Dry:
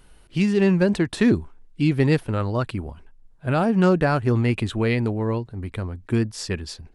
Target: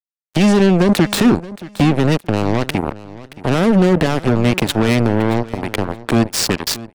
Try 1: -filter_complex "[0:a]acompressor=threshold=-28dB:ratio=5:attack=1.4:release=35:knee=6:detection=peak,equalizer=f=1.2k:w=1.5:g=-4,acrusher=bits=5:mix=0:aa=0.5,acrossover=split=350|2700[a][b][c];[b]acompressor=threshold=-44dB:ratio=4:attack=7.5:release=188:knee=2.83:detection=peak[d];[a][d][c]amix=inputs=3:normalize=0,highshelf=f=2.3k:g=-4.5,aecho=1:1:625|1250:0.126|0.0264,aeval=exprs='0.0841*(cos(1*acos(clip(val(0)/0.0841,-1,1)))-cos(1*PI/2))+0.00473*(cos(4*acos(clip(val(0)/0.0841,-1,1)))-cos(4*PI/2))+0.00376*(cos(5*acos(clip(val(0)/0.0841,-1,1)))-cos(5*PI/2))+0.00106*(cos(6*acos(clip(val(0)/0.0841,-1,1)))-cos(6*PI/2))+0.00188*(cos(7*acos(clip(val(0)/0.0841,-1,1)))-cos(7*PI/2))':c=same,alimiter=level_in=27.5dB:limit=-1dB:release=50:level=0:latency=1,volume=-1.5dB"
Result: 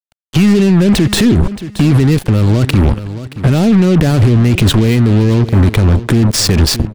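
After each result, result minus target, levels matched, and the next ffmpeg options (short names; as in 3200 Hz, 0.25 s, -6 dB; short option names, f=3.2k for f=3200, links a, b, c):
compressor: peak gain reduction -7 dB; 125 Hz band +4.5 dB
-filter_complex "[0:a]acompressor=threshold=-37dB:ratio=5:attack=1.4:release=35:knee=6:detection=peak,equalizer=f=1.2k:w=1.5:g=-4,acrusher=bits=5:mix=0:aa=0.5,acrossover=split=350|2700[a][b][c];[b]acompressor=threshold=-44dB:ratio=4:attack=7.5:release=188:knee=2.83:detection=peak[d];[a][d][c]amix=inputs=3:normalize=0,highshelf=f=2.3k:g=-4.5,aecho=1:1:625|1250:0.126|0.0264,aeval=exprs='0.0841*(cos(1*acos(clip(val(0)/0.0841,-1,1)))-cos(1*PI/2))+0.00473*(cos(4*acos(clip(val(0)/0.0841,-1,1)))-cos(4*PI/2))+0.00376*(cos(5*acos(clip(val(0)/0.0841,-1,1)))-cos(5*PI/2))+0.00106*(cos(6*acos(clip(val(0)/0.0841,-1,1)))-cos(6*PI/2))+0.00188*(cos(7*acos(clip(val(0)/0.0841,-1,1)))-cos(7*PI/2))':c=same,alimiter=level_in=27.5dB:limit=-1dB:release=50:level=0:latency=1,volume=-1.5dB"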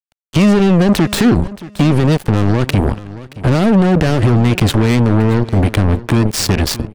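125 Hz band +3.5 dB
-filter_complex "[0:a]acompressor=threshold=-37dB:ratio=5:attack=1.4:release=35:knee=6:detection=peak,highpass=150,equalizer=f=1.2k:w=1.5:g=-4,acrusher=bits=5:mix=0:aa=0.5,acrossover=split=350|2700[a][b][c];[b]acompressor=threshold=-44dB:ratio=4:attack=7.5:release=188:knee=2.83:detection=peak[d];[a][d][c]amix=inputs=3:normalize=0,highshelf=f=2.3k:g=-4.5,aecho=1:1:625|1250:0.126|0.0264,aeval=exprs='0.0841*(cos(1*acos(clip(val(0)/0.0841,-1,1)))-cos(1*PI/2))+0.00473*(cos(4*acos(clip(val(0)/0.0841,-1,1)))-cos(4*PI/2))+0.00376*(cos(5*acos(clip(val(0)/0.0841,-1,1)))-cos(5*PI/2))+0.00106*(cos(6*acos(clip(val(0)/0.0841,-1,1)))-cos(6*PI/2))+0.00188*(cos(7*acos(clip(val(0)/0.0841,-1,1)))-cos(7*PI/2))':c=same,alimiter=level_in=27.5dB:limit=-1dB:release=50:level=0:latency=1,volume=-1.5dB"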